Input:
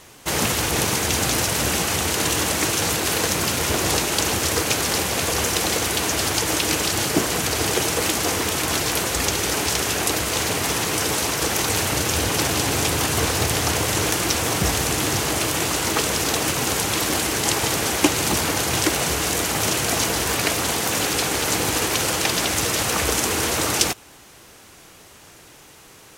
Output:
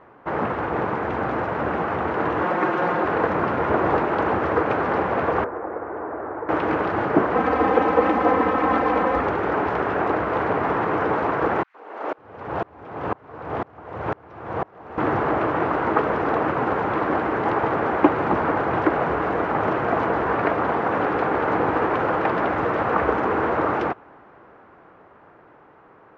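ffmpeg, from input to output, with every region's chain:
-filter_complex "[0:a]asettb=1/sr,asplit=3[a][b][c];[a]atrim=end=2.434[d];[b]atrim=start=2.43:end=3.05,asetpts=PTS-STARTPTS,afade=t=in:d=0.004:c=qsin,afade=t=out:st=0.616:d=0.004:c=qsin,lowshelf=f=130:g=-10,aecho=1:1:5.6:0.71,atrim=end_sample=27342[e];[c]atrim=start=3.046[f];[d][e]acrossfade=d=0.004:c1=hsin:c2=qsin[g];[g][f]acrossfade=d=0.004:c1=qsin:c2=hsin,asettb=1/sr,asplit=3[h][i][j];[h]atrim=end=5.444[k];[i]atrim=start=5.44:end=6.49,asetpts=PTS-STARTPTS,afade=t=in:d=0.004:c=qsin,afade=t=out:st=1.046:d=0.004:c=qsin,lowpass=f=1.8k:w=0.5412,lowpass=f=1.8k:w=1.3066,equalizer=f=180:t=o:w=1:g=-10,acrossover=split=93|220|620[l][m][n][o];[l]acompressor=threshold=-53dB:ratio=3[p];[m]acompressor=threshold=-54dB:ratio=3[q];[n]acompressor=threshold=-35dB:ratio=3[r];[o]acompressor=threshold=-42dB:ratio=3[s];[p][q][r][s]amix=inputs=4:normalize=0[t];[j]atrim=start=6.486[u];[k][t]acrossfade=d=0.004:c1=hsin:c2=qsin[v];[v][u]acrossfade=d=0.004:c1=qsin:c2=hsin,asettb=1/sr,asplit=3[w][x][y];[w]atrim=end=7.354[z];[x]atrim=start=7.35:end=9.2,asetpts=PTS-STARTPTS,afade=t=in:d=0.004:c=qsin,afade=t=out:st=1.846:d=0.004:c=qsin,bandreject=f=1.5k:w=22,aecho=1:1:3.9:0.95,atrim=end_sample=81585[aa];[y]atrim=start=9.196[ab];[z][aa]acrossfade=d=0.004:c1=hsin:c2=qsin[ac];[ac][ab]acrossfade=d=0.004:c1=qsin:c2=hsin,asettb=1/sr,asplit=3[ad][ae][af];[ad]atrim=end=11.634[ag];[ae]atrim=start=11.63:end=14.98,asetpts=PTS-STARTPTS,afade=t=in:d=0.004:c=qsin,afade=t=out:st=3.346:d=0.004:c=qsin,acrossover=split=300|1700[ah][ai][aj];[ai]adelay=110[ak];[ah]adelay=550[al];[al][ak][aj]amix=inputs=3:normalize=0,atrim=end_sample=147735,aeval=exprs='val(0)*pow(10,-31*if(lt(mod(-2*n/s,1),2*abs(-2)/1000),1-mod(-2*n/s,1)/(2*abs(-2)/1000),(mod(-2*n/s,1)-2*abs(-2)/1000)/(1-2*abs(-2)/1000))/20)':c=same[am];[af]atrim=start=14.976[an];[ag][am]acrossfade=d=0.004:c1=hsin:c2=qsin[ao];[ao][an]acrossfade=d=0.004:c1=qsin:c2=hsin,lowpass=f=1.4k:w=0.5412,lowpass=f=1.4k:w=1.3066,aemphasis=mode=production:type=bsi,dynaudnorm=f=210:g=21:m=3.5dB,volume=3dB"

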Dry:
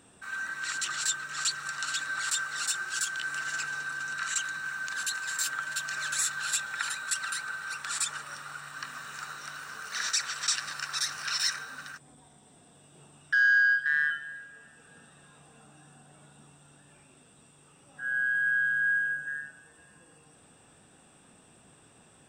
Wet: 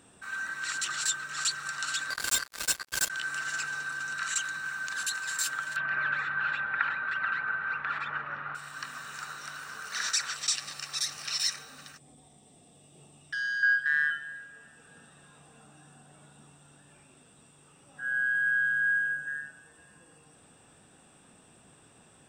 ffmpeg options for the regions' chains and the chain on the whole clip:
-filter_complex "[0:a]asettb=1/sr,asplit=3[a][b][c];[a]atrim=end=2.104[d];[b]atrim=start=2.1:end=3.1,asetpts=PTS-STARTPTS,afade=t=in:d=0.004:c=qsin,afade=t=out:st=0.996:d=0.004:c=qsin,aecho=1:1:1.9:0.72,atrim=end_sample=44100,acrusher=bits=3:mix=0:aa=0.5[e];[c]atrim=start=3.096[f];[d][e]acrossfade=d=0.004:c1=hsin:c2=qsin[g];[g][f]acrossfade=d=0.004:c1=qsin:c2=hsin,asettb=1/sr,asplit=3[h][i][j];[h]atrim=end=5.764[k];[i]atrim=start=5.76:end=8.55,asetpts=PTS-STARTPTS,afade=t=in:d=0.004:c=qsin,afade=t=out:st=2.786:d=0.004:c=qsin,lowpass=f=2.3k:w=0.5412,lowpass=f=2.3k:w=1.3066,acontrast=34[l];[j]atrim=start=8.546[m];[k][l]acrossfade=d=0.004:c1=hsin:c2=qsin[n];[n][m]acrossfade=d=0.004:c1=qsin:c2=hsin,asettb=1/sr,asplit=3[o][p][q];[o]atrim=end=10.364[r];[p]atrim=start=10.36:end=13.63,asetpts=PTS-STARTPTS,afade=t=in:d=0.004:c=qsin,afade=t=out:st=3.266:d=0.004:c=qsin,equalizer=f=1.5k:t=o:w=0.43:g=-13.5,bandreject=f=980:w=6.7[s];[q]atrim=start=13.626[t];[r][s]acrossfade=d=0.004:c1=hsin:c2=qsin[u];[u][t]acrossfade=d=0.004:c1=qsin:c2=hsin"

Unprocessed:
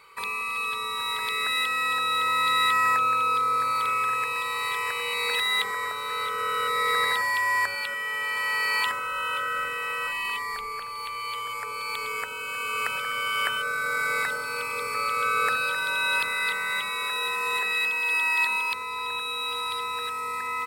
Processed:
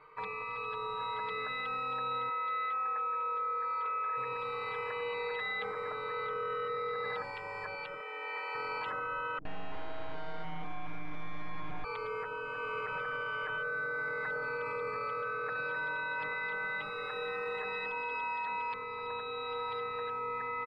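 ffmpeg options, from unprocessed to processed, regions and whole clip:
-filter_complex "[0:a]asettb=1/sr,asplit=3[a][b][c];[a]atrim=end=2.294[d];[b]atrim=start=2.29:end=4.17,asetpts=PTS-STARTPTS,afade=t=in:d=0.004:c=qsin,afade=t=out:st=1.876:d=0.004:c=qsin,highpass=450,lowpass=3.8k,asplit=2[e][f];[f]adelay=17,volume=-9dB[g];[e][g]amix=inputs=2:normalize=0,atrim=end_sample=82908[h];[c]atrim=start=4.166[i];[d][h]acrossfade=d=0.004:c1=hsin:c2=qsin[j];[j][i]acrossfade=d=0.004:c1=qsin:c2=hsin,asettb=1/sr,asplit=3[k][l][m];[k]atrim=end=8.004[n];[l]atrim=start=8:end=8.55,asetpts=PTS-STARTPTS,afade=t=in:d=0.004:c=qsin,afade=t=out:st=0.546:d=0.004:c=qsin,highpass=f=330:w=0.5412,highpass=f=330:w=1.3066,asplit=2[o][p];[p]adelay=26,volume=-7dB[q];[o][q]amix=inputs=2:normalize=0,atrim=end_sample=24255[r];[m]atrim=start=8.546[s];[n][r]acrossfade=d=0.004:c1=hsin:c2=qsin[t];[t][s]acrossfade=d=0.004:c1=qsin:c2=hsin,asettb=1/sr,asplit=3[u][v][w];[u]atrim=end=9.384[x];[v]atrim=start=9.38:end=11.84,asetpts=PTS-STARTPTS,afade=t=in:d=0.004:c=qsin,afade=t=out:st=2.456:d=0.004:c=qsin,equalizer=f=210:w=0.47:g=12.5,acrossover=split=190|3800[y][z][aa];[z]adelay=70[ab];[aa]adelay=150[ac];[y][ab][ac]amix=inputs=3:normalize=0,atrim=end_sample=108486,aeval=exprs='abs(val(0))':c=same[ad];[w]atrim=start=11.836[ae];[x][ad]acrossfade=d=0.004:c1=hsin:c2=qsin[af];[af][ae]acrossfade=d=0.004:c1=qsin:c2=hsin,lowpass=1.3k,aecho=1:1:6.5:0.95,alimiter=level_in=3dB:limit=-24dB:level=0:latency=1:release=13,volume=-3dB,volume=-2dB"

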